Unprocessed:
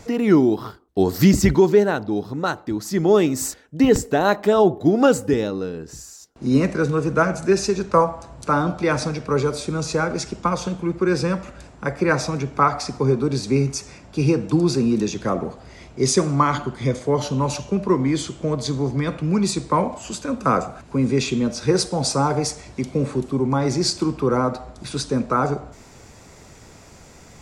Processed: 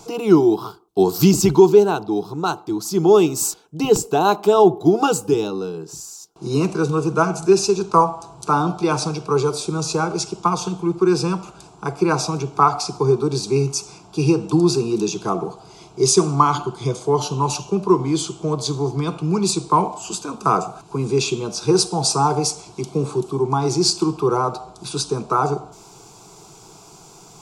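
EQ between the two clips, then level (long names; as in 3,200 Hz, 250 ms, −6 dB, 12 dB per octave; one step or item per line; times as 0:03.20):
dynamic equaliser 2,700 Hz, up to +5 dB, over −50 dBFS, Q 7.9
low-shelf EQ 130 Hz −11 dB
phaser with its sweep stopped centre 370 Hz, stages 8
+5.5 dB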